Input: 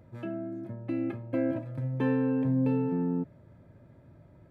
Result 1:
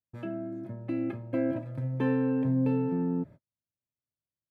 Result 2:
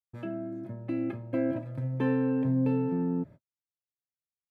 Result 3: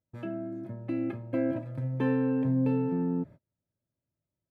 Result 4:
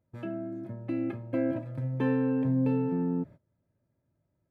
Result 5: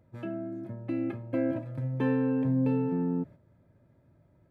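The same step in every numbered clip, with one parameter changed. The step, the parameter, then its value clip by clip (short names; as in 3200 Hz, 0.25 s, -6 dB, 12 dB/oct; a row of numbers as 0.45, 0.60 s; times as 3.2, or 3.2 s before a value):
gate, range: -47, -60, -34, -22, -8 dB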